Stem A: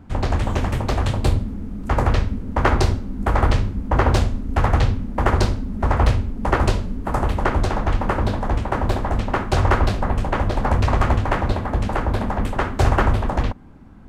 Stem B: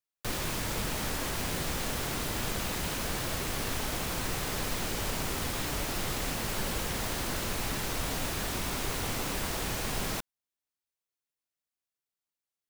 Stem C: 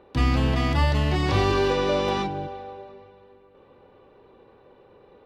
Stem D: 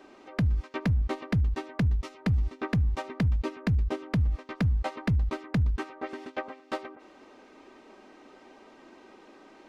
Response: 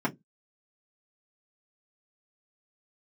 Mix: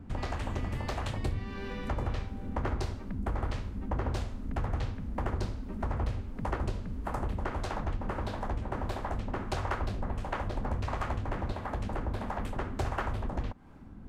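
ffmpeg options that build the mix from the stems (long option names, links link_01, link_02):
-filter_complex "[0:a]acrossover=split=510[link_01][link_02];[link_01]aeval=exprs='val(0)*(1-0.5/2+0.5/2*cos(2*PI*1.5*n/s))':channel_layout=same[link_03];[link_02]aeval=exprs='val(0)*(1-0.5/2-0.5/2*cos(2*PI*1.5*n/s))':channel_layout=same[link_04];[link_03][link_04]amix=inputs=2:normalize=0,volume=-2.5dB[link_05];[2:a]equalizer=frequency=1900:width=1.5:gain=11,volume=-18dB[link_06];[3:a]lowpass=2000,adelay=2250,volume=-11dB[link_07];[link_05][link_06][link_07]amix=inputs=3:normalize=0,acompressor=threshold=-34dB:ratio=2.5"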